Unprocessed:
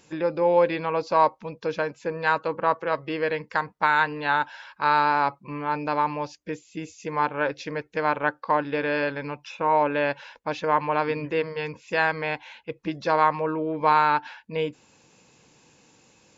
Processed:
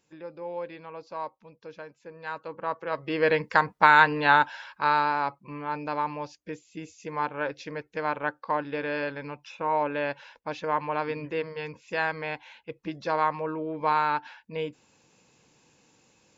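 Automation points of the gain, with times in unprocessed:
2.1 s -15.5 dB
2.9 s -5.5 dB
3.3 s +4 dB
4.32 s +4 dB
5.17 s -5 dB

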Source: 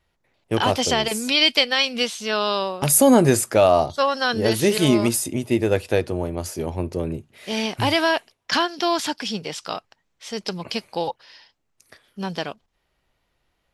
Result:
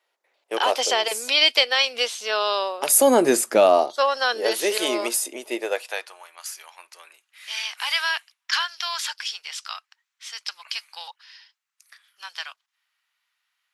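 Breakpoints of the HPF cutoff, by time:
HPF 24 dB/oct
2.74 s 440 Hz
3.59 s 200 Hz
4.03 s 430 Hz
5.55 s 430 Hz
6.25 s 1200 Hz

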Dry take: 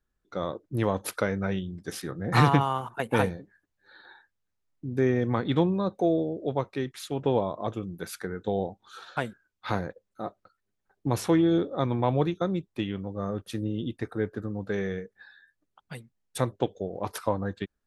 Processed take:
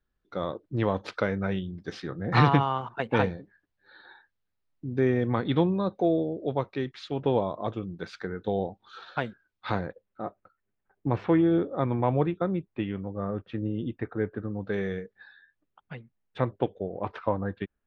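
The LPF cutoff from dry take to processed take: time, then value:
LPF 24 dB/oct
9.72 s 4700 Hz
10.27 s 2700 Hz
14.31 s 2700 Hz
14.91 s 5200 Hz
15.97 s 2900 Hz

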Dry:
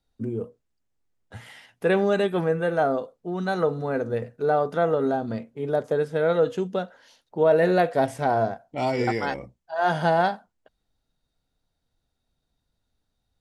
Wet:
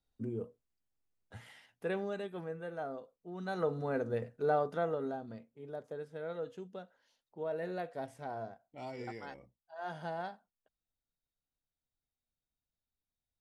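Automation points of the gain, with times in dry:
1.37 s -9 dB
2.24 s -18 dB
3.14 s -18 dB
3.76 s -8 dB
4.54 s -8 dB
5.5 s -19 dB

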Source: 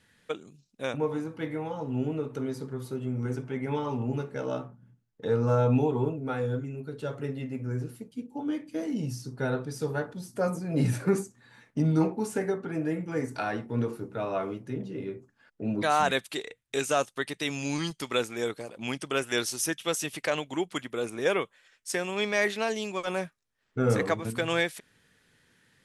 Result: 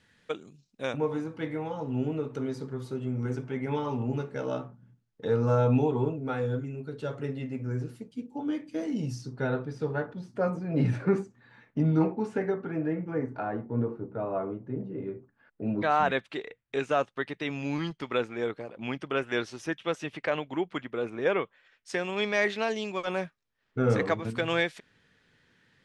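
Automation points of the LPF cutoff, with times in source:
9.13 s 7000 Hz
9.66 s 2900 Hz
12.57 s 2900 Hz
13.49 s 1100 Hz
14.74 s 1100 Hz
15.63 s 2500 Hz
21.43 s 2500 Hz
22.11 s 4800 Hz

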